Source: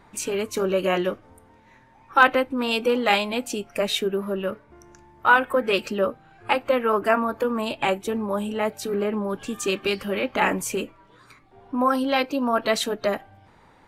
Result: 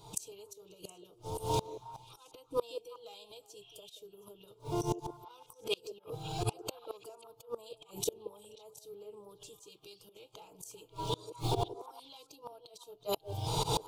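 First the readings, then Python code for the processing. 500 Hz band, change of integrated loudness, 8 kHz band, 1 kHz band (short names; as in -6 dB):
-16.5 dB, -16.0 dB, -8.5 dB, -17.0 dB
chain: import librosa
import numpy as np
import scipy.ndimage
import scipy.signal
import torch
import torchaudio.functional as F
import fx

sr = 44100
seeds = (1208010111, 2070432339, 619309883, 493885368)

y = fx.recorder_agc(x, sr, target_db=-9.5, rise_db_per_s=49.0, max_gain_db=30)
y = fx.low_shelf(y, sr, hz=130.0, db=-6.5)
y = 10.0 ** (-4.0 / 20.0) * np.tanh(y / 10.0 ** (-4.0 / 20.0))
y = fx.fixed_phaser(y, sr, hz=370.0, stages=8)
y = fx.spec_repair(y, sr, seeds[0], start_s=3.64, length_s=0.26, low_hz=1600.0, high_hz=3600.0, source='both')
y = fx.curve_eq(y, sr, hz=(130.0, 210.0, 470.0, 1700.0, 3400.0), db=(0, -19, -2, -21, 1))
y = fx.auto_swell(y, sr, attack_ms=128.0)
y = fx.notch_comb(y, sr, f0_hz=380.0)
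y = fx.gate_flip(y, sr, shuts_db=-29.0, range_db=-31)
y = fx.echo_stepped(y, sr, ms=180, hz=440.0, octaves=1.4, feedback_pct=70, wet_db=-9)
y = y * librosa.db_to_amplitude(10.0)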